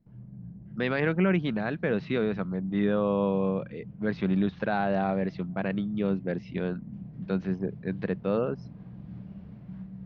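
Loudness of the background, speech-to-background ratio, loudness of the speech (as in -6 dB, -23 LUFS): -44.5 LUFS, 15.5 dB, -29.0 LUFS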